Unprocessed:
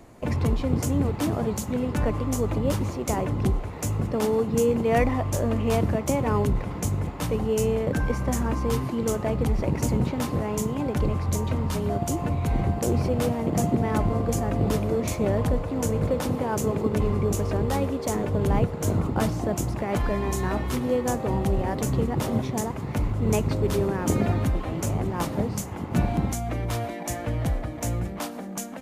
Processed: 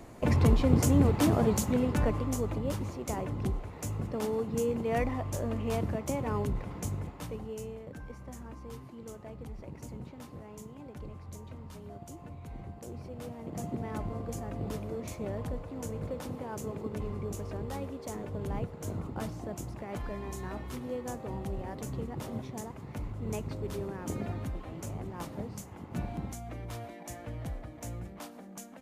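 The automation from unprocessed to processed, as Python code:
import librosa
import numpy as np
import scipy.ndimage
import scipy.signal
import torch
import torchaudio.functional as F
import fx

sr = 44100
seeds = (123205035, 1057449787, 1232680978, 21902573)

y = fx.gain(x, sr, db=fx.line((1.6, 0.5), (2.65, -8.5), (6.93, -8.5), (7.84, -19.5), (13.04, -19.5), (13.77, -12.5)))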